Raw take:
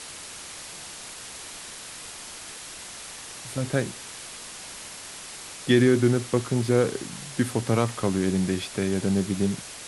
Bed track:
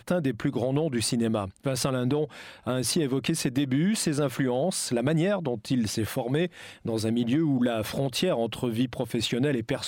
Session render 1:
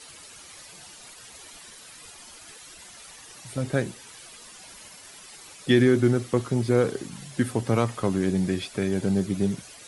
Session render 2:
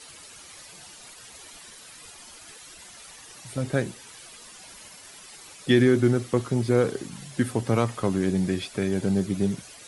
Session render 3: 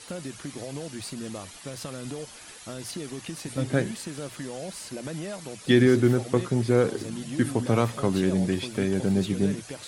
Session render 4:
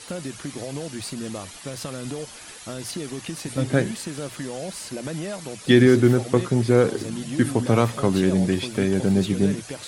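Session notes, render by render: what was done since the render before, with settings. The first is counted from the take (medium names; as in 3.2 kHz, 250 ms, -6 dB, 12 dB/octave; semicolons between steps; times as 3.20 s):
noise reduction 11 dB, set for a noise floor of -41 dBFS
no audible change
add bed track -10.5 dB
trim +4 dB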